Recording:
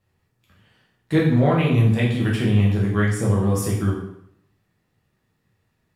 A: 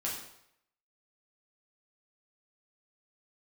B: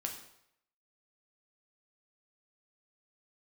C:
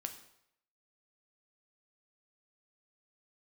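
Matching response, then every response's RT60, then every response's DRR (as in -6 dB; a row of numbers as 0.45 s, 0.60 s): A; 0.75 s, 0.75 s, 0.75 s; -5.0 dB, 2.0 dB, 6.0 dB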